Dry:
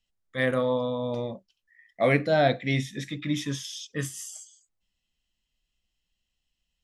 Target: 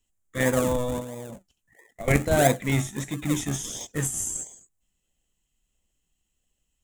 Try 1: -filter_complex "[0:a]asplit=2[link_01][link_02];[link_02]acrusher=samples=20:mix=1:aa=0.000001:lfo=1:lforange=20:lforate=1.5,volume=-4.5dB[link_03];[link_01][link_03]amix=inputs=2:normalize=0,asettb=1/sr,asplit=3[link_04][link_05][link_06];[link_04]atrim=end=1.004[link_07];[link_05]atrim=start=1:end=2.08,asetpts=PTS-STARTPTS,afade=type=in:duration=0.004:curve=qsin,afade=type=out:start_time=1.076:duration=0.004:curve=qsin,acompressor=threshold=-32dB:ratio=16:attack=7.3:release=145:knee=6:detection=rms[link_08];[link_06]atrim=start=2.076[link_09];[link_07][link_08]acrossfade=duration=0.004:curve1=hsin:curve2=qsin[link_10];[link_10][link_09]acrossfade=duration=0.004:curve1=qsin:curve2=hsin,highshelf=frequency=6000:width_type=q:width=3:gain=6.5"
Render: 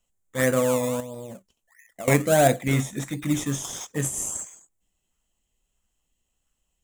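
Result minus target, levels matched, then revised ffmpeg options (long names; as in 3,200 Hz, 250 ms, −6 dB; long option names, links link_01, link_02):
sample-and-hold swept by an LFO: distortion −15 dB
-filter_complex "[0:a]asplit=2[link_01][link_02];[link_02]acrusher=samples=60:mix=1:aa=0.000001:lfo=1:lforange=60:lforate=1.5,volume=-4.5dB[link_03];[link_01][link_03]amix=inputs=2:normalize=0,asettb=1/sr,asplit=3[link_04][link_05][link_06];[link_04]atrim=end=1.004[link_07];[link_05]atrim=start=1:end=2.08,asetpts=PTS-STARTPTS,afade=type=in:duration=0.004:curve=qsin,afade=type=out:start_time=1.076:duration=0.004:curve=qsin,acompressor=threshold=-32dB:ratio=16:attack=7.3:release=145:knee=6:detection=rms[link_08];[link_06]atrim=start=2.076[link_09];[link_07][link_08]acrossfade=duration=0.004:curve1=hsin:curve2=qsin[link_10];[link_10][link_09]acrossfade=duration=0.004:curve1=qsin:curve2=hsin,highshelf=frequency=6000:width_type=q:width=3:gain=6.5"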